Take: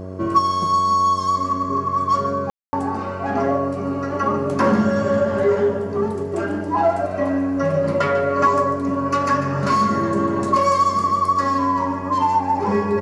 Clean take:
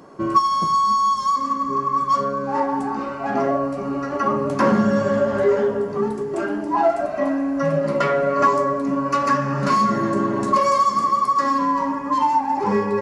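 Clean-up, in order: de-hum 93.3 Hz, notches 7; room tone fill 2.5–2.73; inverse comb 0.146 s -12 dB

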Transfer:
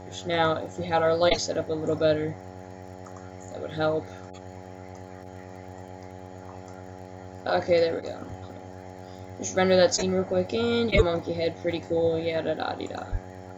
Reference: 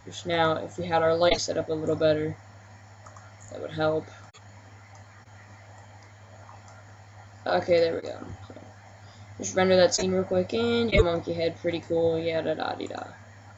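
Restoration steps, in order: de-click; de-hum 92.5 Hz, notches 9; 13.11–13.23 HPF 140 Hz 24 dB/oct

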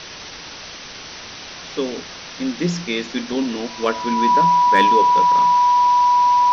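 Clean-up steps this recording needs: clip repair -6 dBFS; notch 980 Hz, Q 30; noise print and reduce 28 dB

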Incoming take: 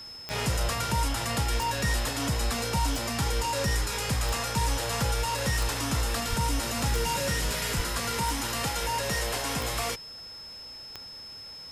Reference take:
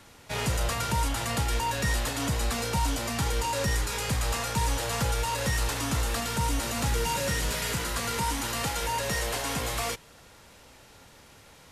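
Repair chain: de-click; notch 5200 Hz, Q 30; de-plosive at 6.29/7.76

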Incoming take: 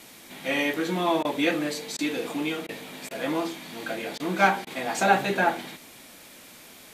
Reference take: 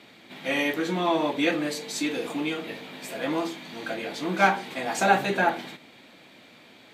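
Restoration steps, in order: interpolate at 1.23/1.97/2.67/3.09/4.18/4.65, 17 ms; denoiser 6 dB, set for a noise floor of -48 dBFS

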